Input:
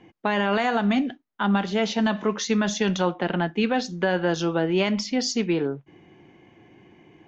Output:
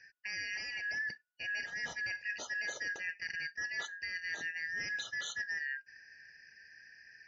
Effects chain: four-band scrambler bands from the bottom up 3142; reverse; compressor 5:1, threshold -32 dBFS, peak gain reduction 13.5 dB; reverse; notch comb 1100 Hz; gain -4 dB; MP3 40 kbps 48000 Hz

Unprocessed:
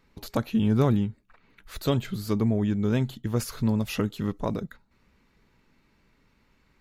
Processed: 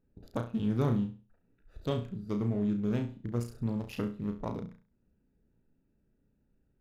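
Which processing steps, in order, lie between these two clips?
Wiener smoothing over 41 samples; flutter echo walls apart 5.8 m, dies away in 0.35 s; gain -7.5 dB

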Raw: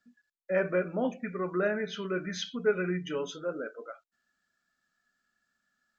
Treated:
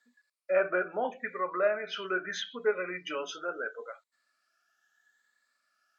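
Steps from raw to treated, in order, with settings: moving spectral ripple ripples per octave 1, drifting +0.76 Hz, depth 9 dB; HPF 600 Hz 12 dB/oct; treble ducked by the level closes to 2000 Hz, closed at -31 dBFS; gain +4 dB

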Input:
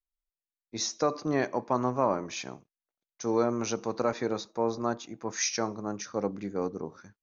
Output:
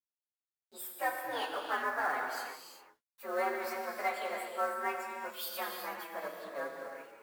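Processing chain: inharmonic rescaling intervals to 128%; HPF 770 Hz 12 dB/oct; high shelf 6100 Hz -7 dB; companded quantiser 6-bit; non-linear reverb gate 0.41 s flat, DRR 1.5 dB

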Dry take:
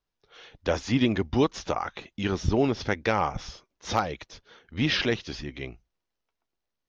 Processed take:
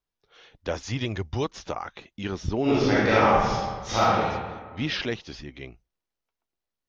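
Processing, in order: 0.83–1.46 fifteen-band EQ 100 Hz +6 dB, 250 Hz -8 dB, 6300 Hz +6 dB; 2.62–4.22 reverb throw, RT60 1.5 s, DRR -10 dB; gain -3.5 dB

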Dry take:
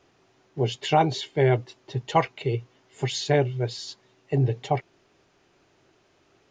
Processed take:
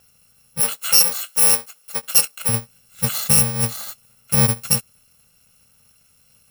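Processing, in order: FFT order left unsorted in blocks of 128 samples; 0.6–2.49 HPF 430 Hz 12 dB/oct; gain +6 dB

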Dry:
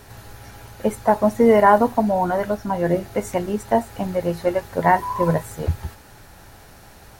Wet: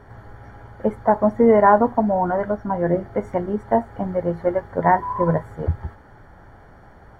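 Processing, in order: polynomial smoothing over 41 samples

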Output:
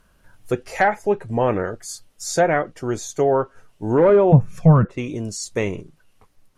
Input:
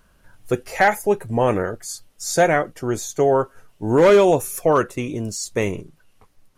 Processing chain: 4.32–4.85 resonant low shelf 250 Hz +12.5 dB, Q 3; treble ducked by the level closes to 1200 Hz, closed at -9.5 dBFS; gain -1 dB

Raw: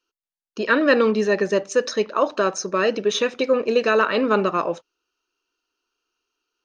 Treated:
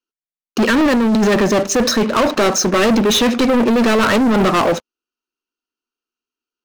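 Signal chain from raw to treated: bell 230 Hz +14 dB 0.44 oct; negative-ratio compressor -17 dBFS, ratio -1; sample leveller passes 5; gain -5 dB

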